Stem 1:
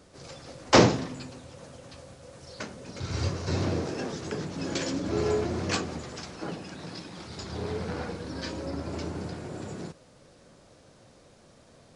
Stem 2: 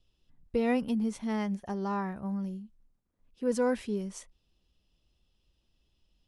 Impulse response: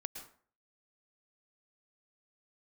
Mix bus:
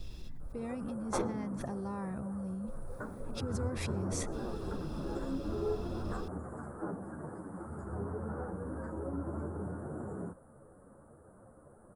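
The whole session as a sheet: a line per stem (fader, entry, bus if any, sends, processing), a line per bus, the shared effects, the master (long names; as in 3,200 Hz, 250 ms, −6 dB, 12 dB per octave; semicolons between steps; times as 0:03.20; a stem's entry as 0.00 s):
+2.5 dB, 0.40 s, no send, downward compressor 3 to 1, threshold −35 dBFS, peak gain reduction 16.5 dB; elliptic band-stop filter 1,400–9,400 Hz, stop band 40 dB; string-ensemble chorus
−18.0 dB, 0.00 s, send −18 dB, low-shelf EQ 350 Hz +6.5 dB; envelope flattener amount 100%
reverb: on, RT60 0.45 s, pre-delay 102 ms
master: notch filter 3,000 Hz, Q 5.2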